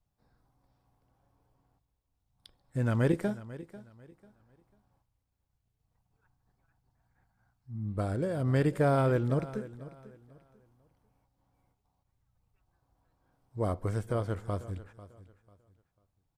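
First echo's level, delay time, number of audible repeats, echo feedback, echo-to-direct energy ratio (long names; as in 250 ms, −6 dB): −17.0 dB, 494 ms, 2, 27%, −16.5 dB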